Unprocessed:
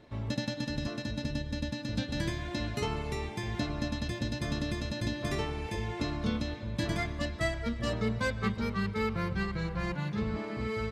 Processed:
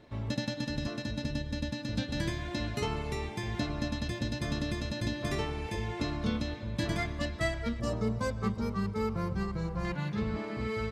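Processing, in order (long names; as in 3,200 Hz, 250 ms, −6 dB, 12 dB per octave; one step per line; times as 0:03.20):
0:07.80–0:09.85: flat-topped bell 2,500 Hz −9 dB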